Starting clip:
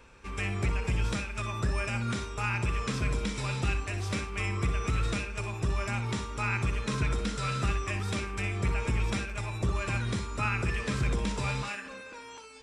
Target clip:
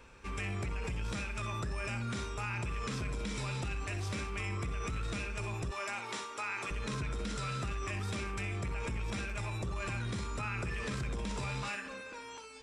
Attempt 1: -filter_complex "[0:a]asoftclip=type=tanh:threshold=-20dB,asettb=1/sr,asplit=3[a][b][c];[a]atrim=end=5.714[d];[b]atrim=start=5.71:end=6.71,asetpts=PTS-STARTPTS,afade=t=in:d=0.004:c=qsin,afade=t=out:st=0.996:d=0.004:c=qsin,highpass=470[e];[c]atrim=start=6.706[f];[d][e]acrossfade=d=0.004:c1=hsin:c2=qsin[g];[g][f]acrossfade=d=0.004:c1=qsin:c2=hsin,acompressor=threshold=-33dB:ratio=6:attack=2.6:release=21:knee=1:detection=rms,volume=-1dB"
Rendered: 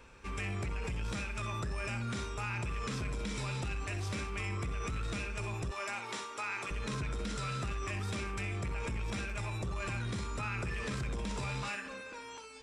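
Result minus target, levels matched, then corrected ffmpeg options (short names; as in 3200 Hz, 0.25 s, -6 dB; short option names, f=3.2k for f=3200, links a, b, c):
soft clip: distortion +16 dB
-filter_complex "[0:a]asoftclip=type=tanh:threshold=-11dB,asettb=1/sr,asplit=3[a][b][c];[a]atrim=end=5.714[d];[b]atrim=start=5.71:end=6.71,asetpts=PTS-STARTPTS,afade=t=in:d=0.004:c=qsin,afade=t=out:st=0.996:d=0.004:c=qsin,highpass=470[e];[c]atrim=start=6.706[f];[d][e]acrossfade=d=0.004:c1=hsin:c2=qsin[g];[g][f]acrossfade=d=0.004:c1=qsin:c2=hsin,acompressor=threshold=-33dB:ratio=6:attack=2.6:release=21:knee=1:detection=rms,volume=-1dB"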